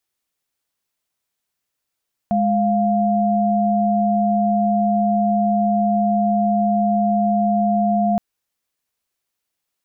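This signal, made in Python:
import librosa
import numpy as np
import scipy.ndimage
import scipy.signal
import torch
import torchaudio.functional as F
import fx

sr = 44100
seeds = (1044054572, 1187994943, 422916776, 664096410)

y = fx.chord(sr, length_s=5.87, notes=(56, 77), wave='sine', level_db=-17.5)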